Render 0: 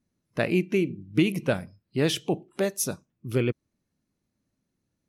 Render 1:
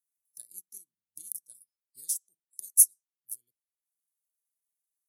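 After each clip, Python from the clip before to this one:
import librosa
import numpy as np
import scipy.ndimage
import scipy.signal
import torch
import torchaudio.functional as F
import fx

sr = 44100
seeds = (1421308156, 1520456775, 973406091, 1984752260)

y = scipy.signal.sosfilt(scipy.signal.cheby2(4, 60, 2800.0, 'highpass', fs=sr, output='sos'), x)
y = fx.transient(y, sr, attack_db=9, sustain_db=-9)
y = y * 10.0 ** (6.0 / 20.0)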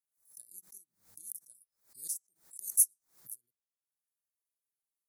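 y = fx.peak_eq(x, sr, hz=2900.0, db=-13.5, octaves=0.64)
y = fx.pre_swell(y, sr, db_per_s=150.0)
y = y * 10.0 ** (-6.0 / 20.0)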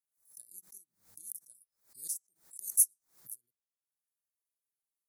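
y = x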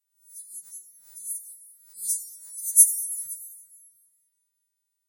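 y = fx.freq_snap(x, sr, grid_st=2)
y = fx.rev_plate(y, sr, seeds[0], rt60_s=2.5, hf_ratio=0.65, predelay_ms=0, drr_db=6.0)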